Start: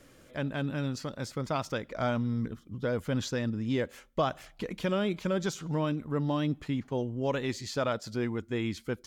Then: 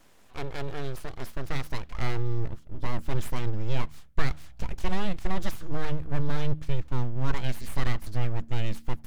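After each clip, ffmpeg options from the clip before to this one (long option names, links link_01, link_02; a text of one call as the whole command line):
ffmpeg -i in.wav -af "aeval=exprs='abs(val(0))':channel_layout=same,asubboost=boost=5:cutoff=170,bandreject=frequency=76.39:width_type=h:width=4,bandreject=frequency=152.78:width_type=h:width=4,bandreject=frequency=229.17:width_type=h:width=4,bandreject=frequency=305.56:width_type=h:width=4" out.wav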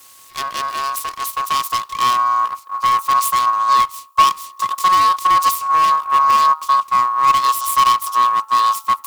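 ffmpeg -i in.wav -filter_complex "[0:a]aeval=exprs='val(0)*sin(2*PI*1100*n/s)':channel_layout=same,acrossover=split=1700[link_01][link_02];[link_02]crystalizer=i=7.5:c=0[link_03];[link_01][link_03]amix=inputs=2:normalize=0,volume=6.5dB" out.wav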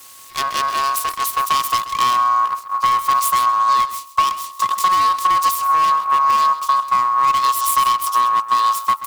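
ffmpeg -i in.wav -af "acompressor=threshold=-16dB:ratio=6,aecho=1:1:132:0.188,volume=3dB" out.wav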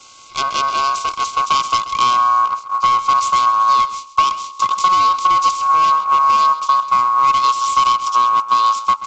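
ffmpeg -i in.wav -af "asuperstop=centerf=1800:order=12:qfactor=4.2,volume=2dB" -ar 16000 -c:a pcm_alaw out.wav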